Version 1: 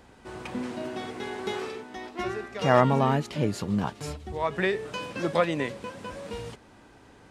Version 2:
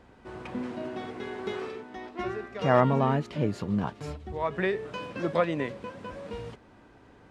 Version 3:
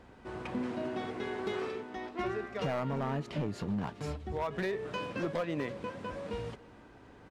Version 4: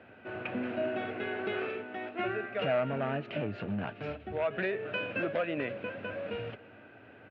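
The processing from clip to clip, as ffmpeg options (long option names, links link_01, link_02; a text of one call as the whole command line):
ffmpeg -i in.wav -af "lowpass=frequency=2300:poles=1,bandreject=frequency=830:width=22,volume=-1dB" out.wav
ffmpeg -i in.wav -af "acompressor=threshold=-29dB:ratio=4,volume=27.5dB,asoftclip=hard,volume=-27.5dB,aecho=1:1:279:0.075" out.wav
ffmpeg -i in.wav -af "highpass=frequency=100:width=0.5412,highpass=frequency=100:width=1.3066,equalizer=frequency=100:width_type=q:width=4:gain=4,equalizer=frequency=160:width_type=q:width=4:gain=-6,equalizer=frequency=630:width_type=q:width=4:gain=8,equalizer=frequency=1000:width_type=q:width=4:gain=-8,equalizer=frequency=1500:width_type=q:width=4:gain=8,equalizer=frequency=2600:width_type=q:width=4:gain=10,lowpass=frequency=3300:width=0.5412,lowpass=frequency=3300:width=1.3066" out.wav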